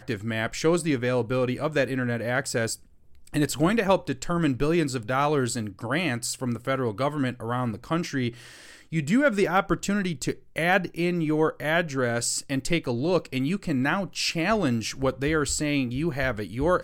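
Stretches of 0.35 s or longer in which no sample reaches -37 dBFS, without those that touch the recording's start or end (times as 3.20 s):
2.75–3.27 s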